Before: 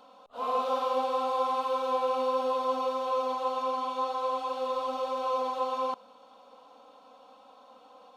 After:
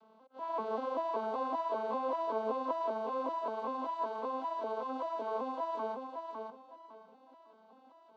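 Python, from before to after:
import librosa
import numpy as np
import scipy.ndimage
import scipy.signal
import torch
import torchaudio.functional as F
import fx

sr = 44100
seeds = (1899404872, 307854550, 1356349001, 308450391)

p1 = fx.vocoder_arp(x, sr, chord='minor triad', root=57, every_ms=193)
p2 = p1 + fx.echo_feedback(p1, sr, ms=555, feedback_pct=25, wet_db=-5.0, dry=0)
y = p2 * librosa.db_to_amplitude(-6.0)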